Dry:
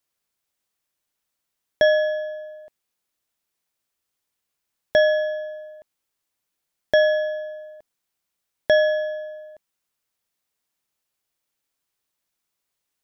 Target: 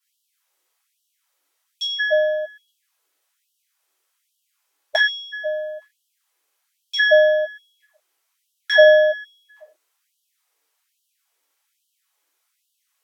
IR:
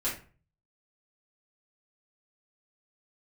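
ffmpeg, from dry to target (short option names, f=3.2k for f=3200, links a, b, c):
-filter_complex "[1:a]atrim=start_sample=2205,afade=t=out:st=0.2:d=0.01,atrim=end_sample=9261,asetrate=34839,aresample=44100[a];[0:a][a]afir=irnorm=-1:irlink=0,afftfilt=real='re*gte(b*sr/1024,270*pow(2800/270,0.5+0.5*sin(2*PI*1.2*pts/sr)))':imag='im*gte(b*sr/1024,270*pow(2800/270,0.5+0.5*sin(2*PI*1.2*pts/sr)))':win_size=1024:overlap=0.75,volume=2.5dB"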